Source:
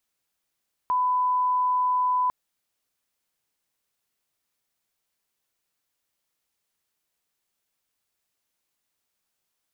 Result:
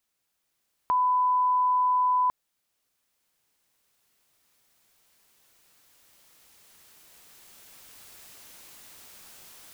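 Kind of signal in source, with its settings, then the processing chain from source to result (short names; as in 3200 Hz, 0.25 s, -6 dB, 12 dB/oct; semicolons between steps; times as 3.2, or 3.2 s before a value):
line-up tone -20 dBFS 1.40 s
recorder AGC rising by 5.2 dB/s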